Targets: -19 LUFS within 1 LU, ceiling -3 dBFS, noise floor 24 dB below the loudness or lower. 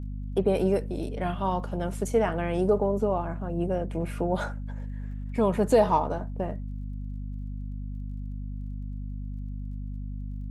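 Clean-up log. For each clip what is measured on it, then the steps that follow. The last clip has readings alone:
ticks 18/s; hum 50 Hz; harmonics up to 250 Hz; hum level -32 dBFS; loudness -29.5 LUFS; peak -9.0 dBFS; loudness target -19.0 LUFS
-> de-click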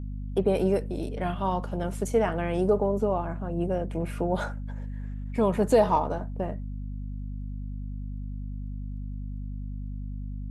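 ticks 0/s; hum 50 Hz; harmonics up to 250 Hz; hum level -32 dBFS
-> notches 50/100/150/200/250 Hz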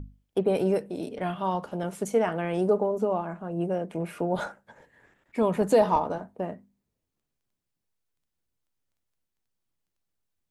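hum none; loudness -27.5 LUFS; peak -10.0 dBFS; loudness target -19.0 LUFS
-> gain +8.5 dB; limiter -3 dBFS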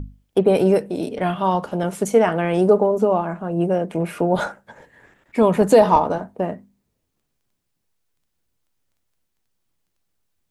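loudness -19.5 LUFS; peak -3.0 dBFS; noise floor -74 dBFS

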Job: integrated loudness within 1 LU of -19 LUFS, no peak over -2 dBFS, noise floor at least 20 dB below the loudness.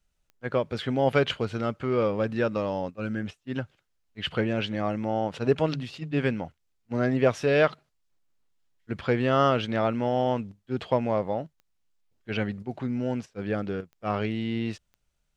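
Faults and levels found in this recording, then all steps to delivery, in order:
clicks 4; loudness -28.0 LUFS; peak -7.5 dBFS; loudness target -19.0 LUFS
-> de-click; gain +9 dB; limiter -2 dBFS

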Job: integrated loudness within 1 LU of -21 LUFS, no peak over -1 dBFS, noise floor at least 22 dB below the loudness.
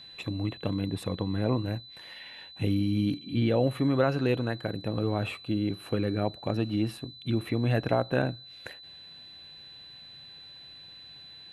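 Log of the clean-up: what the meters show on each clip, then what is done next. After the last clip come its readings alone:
steady tone 4000 Hz; tone level -46 dBFS; loudness -29.5 LUFS; peak -11.5 dBFS; loudness target -21.0 LUFS
-> notch 4000 Hz, Q 30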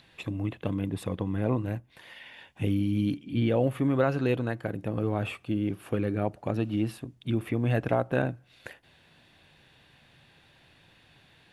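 steady tone none; loudness -29.5 LUFS; peak -11.5 dBFS; loudness target -21.0 LUFS
-> gain +8.5 dB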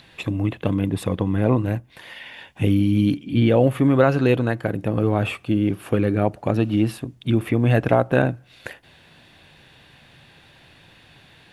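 loudness -21.0 LUFS; peak -3.0 dBFS; noise floor -52 dBFS

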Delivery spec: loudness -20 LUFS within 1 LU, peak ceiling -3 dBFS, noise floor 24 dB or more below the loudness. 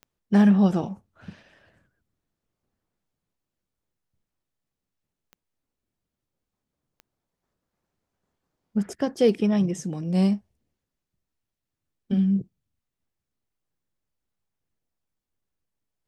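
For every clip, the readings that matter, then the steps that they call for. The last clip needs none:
clicks 4; loudness -23.0 LUFS; peak -9.0 dBFS; loudness target -20.0 LUFS
-> de-click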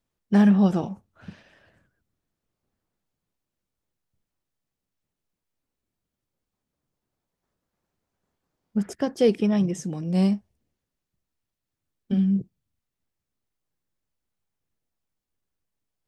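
clicks 0; loudness -23.0 LUFS; peak -9.0 dBFS; loudness target -20.0 LUFS
-> gain +3 dB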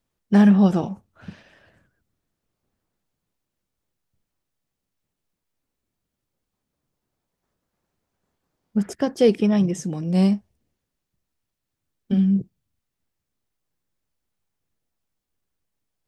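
loudness -20.0 LUFS; peak -6.0 dBFS; noise floor -82 dBFS

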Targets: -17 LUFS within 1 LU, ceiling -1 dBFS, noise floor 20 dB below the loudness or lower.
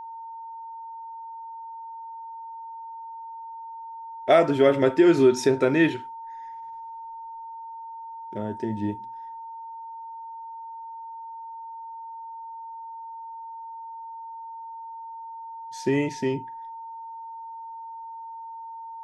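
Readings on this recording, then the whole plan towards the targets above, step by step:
steady tone 910 Hz; tone level -36 dBFS; loudness -22.5 LUFS; peak -7.0 dBFS; loudness target -17.0 LUFS
-> notch 910 Hz, Q 30; gain +5.5 dB

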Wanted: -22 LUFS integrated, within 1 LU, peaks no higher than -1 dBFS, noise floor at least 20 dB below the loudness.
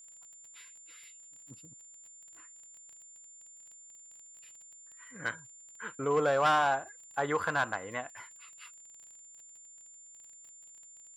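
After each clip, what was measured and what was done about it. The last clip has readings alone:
ticks 26/s; steady tone 7200 Hz; tone level -51 dBFS; loudness -31.0 LUFS; peak -17.5 dBFS; loudness target -22.0 LUFS
-> de-click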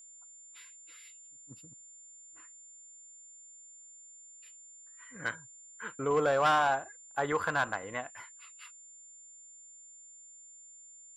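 ticks 0/s; steady tone 7200 Hz; tone level -51 dBFS
-> notch 7200 Hz, Q 30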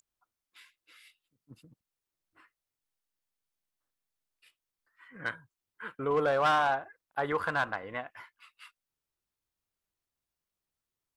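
steady tone none; loudness -30.5 LUFS; peak -18.0 dBFS; loudness target -22.0 LUFS
-> gain +8.5 dB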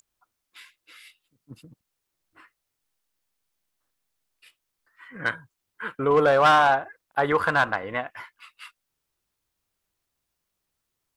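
loudness -22.0 LUFS; peak -9.5 dBFS; noise floor -81 dBFS

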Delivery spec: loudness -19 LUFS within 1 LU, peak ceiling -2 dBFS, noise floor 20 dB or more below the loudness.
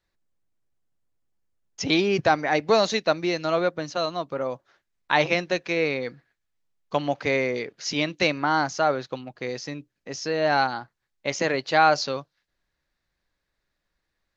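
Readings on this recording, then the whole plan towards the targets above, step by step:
loudness -24.5 LUFS; peak -5.5 dBFS; loudness target -19.0 LUFS
-> gain +5.5 dB; limiter -2 dBFS

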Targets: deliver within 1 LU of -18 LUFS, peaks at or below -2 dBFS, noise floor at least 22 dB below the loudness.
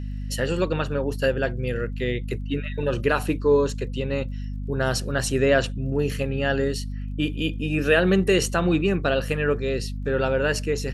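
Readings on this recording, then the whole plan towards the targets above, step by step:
ticks 34/s; hum 50 Hz; harmonics up to 250 Hz; hum level -28 dBFS; loudness -24.0 LUFS; peak -6.0 dBFS; loudness target -18.0 LUFS
-> de-click; notches 50/100/150/200/250 Hz; gain +6 dB; limiter -2 dBFS

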